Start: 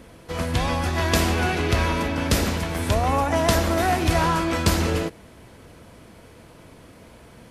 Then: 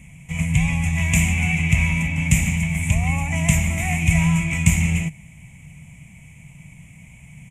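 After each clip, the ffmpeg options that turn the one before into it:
-af "firequalizer=gain_entry='entry(110,0);entry(150,11);entry(220,-7);entry(390,-28);entry(780,-11);entry(1500,-24);entry(2200,9);entry(4400,-28);entry(7000,7);entry(11000,-6)':delay=0.05:min_phase=1,volume=3.5dB"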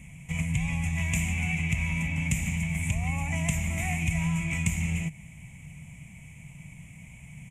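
-af "acompressor=threshold=-25dB:ratio=2.5,volume=-2.5dB"

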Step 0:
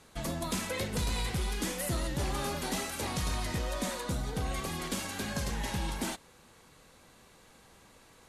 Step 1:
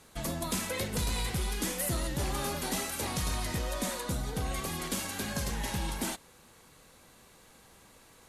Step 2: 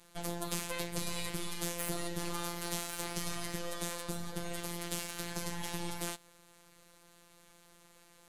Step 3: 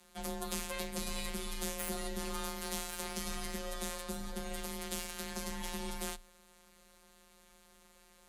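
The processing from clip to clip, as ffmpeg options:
-af "highshelf=f=11k:g=9.5"
-af "afftfilt=real='hypot(re,im)*cos(PI*b)':imag='0':win_size=1024:overlap=0.75,aeval=exprs='max(val(0),0)':c=same"
-af "afreqshift=27,volume=-1.5dB"

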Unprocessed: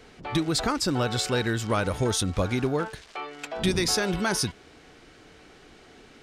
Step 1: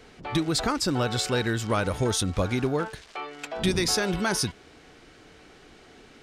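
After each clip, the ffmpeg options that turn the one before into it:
-af anull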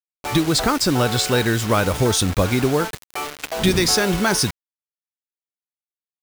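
-af "acrusher=bits=5:mix=0:aa=0.000001,volume=7dB"

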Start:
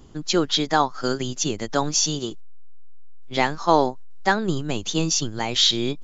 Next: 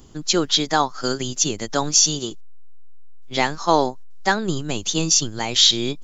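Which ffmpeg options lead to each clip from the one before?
-af "highshelf=f=5.4k:g=11"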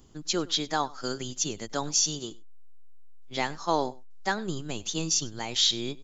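-filter_complex "[0:a]asplit=2[a][b];[b]adelay=99.13,volume=-22dB,highshelf=f=4k:g=-2.23[c];[a][c]amix=inputs=2:normalize=0,volume=-9dB"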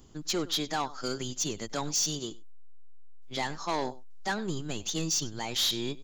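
-af "asoftclip=type=tanh:threshold=-24.5dB,volume=1dB"

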